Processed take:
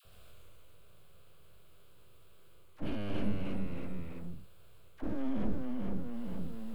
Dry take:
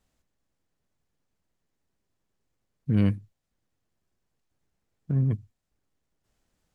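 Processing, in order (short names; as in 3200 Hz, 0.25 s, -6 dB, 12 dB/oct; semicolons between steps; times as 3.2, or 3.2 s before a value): spectral dilation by 0.24 s; reverse; compressor, threshold -32 dBFS, peak gain reduction 15.5 dB; reverse; limiter -35 dBFS, peak gain reduction 10.5 dB; fixed phaser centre 1300 Hz, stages 8; full-wave rectifier; dispersion lows, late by 52 ms, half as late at 810 Hz; echoes that change speed 0.122 s, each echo -1 st, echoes 3; attack slew limiter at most 520 dB/s; gain +14 dB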